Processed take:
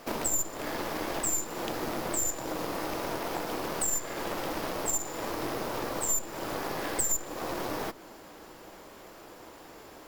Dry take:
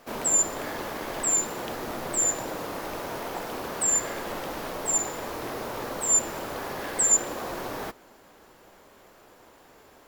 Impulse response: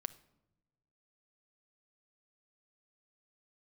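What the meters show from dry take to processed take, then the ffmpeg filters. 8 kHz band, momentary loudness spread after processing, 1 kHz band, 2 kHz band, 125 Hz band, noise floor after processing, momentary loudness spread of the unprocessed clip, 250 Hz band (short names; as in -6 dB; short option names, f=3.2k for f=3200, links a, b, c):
-7.5 dB, 20 LU, -1.5 dB, -2.0 dB, 0.0 dB, -50 dBFS, 12 LU, +0.5 dB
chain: -filter_complex "[0:a]aeval=exprs='0.282*(cos(1*acos(clip(val(0)/0.282,-1,1)))-cos(1*PI/2))+0.0631*(cos(4*acos(clip(val(0)/0.282,-1,1)))-cos(4*PI/2))+0.0112*(cos(7*acos(clip(val(0)/0.282,-1,1)))-cos(7*PI/2))':c=same,acompressor=threshold=-39dB:ratio=3,asplit=2[a][b];[b]equalizer=f=315:t=o:w=0.33:g=8,equalizer=f=1.6k:t=o:w=0.33:g=-5,equalizer=f=5k:t=o:w=0.33:g=6[c];[1:a]atrim=start_sample=2205[d];[c][d]afir=irnorm=-1:irlink=0,volume=-2dB[e];[a][e]amix=inputs=2:normalize=0,volume=3.5dB"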